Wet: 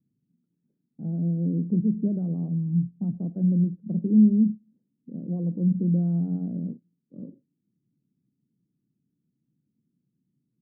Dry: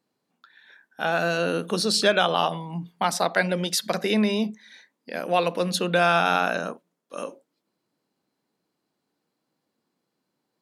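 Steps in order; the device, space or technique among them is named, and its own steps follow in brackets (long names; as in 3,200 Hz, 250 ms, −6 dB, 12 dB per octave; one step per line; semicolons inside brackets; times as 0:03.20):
the neighbour's flat through the wall (low-pass filter 240 Hz 24 dB per octave; parametric band 130 Hz +7 dB 0.53 octaves)
level +7 dB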